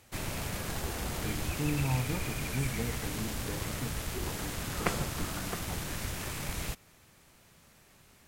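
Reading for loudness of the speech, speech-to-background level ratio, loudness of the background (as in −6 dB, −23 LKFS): −39.0 LKFS, −3.0 dB, −36.0 LKFS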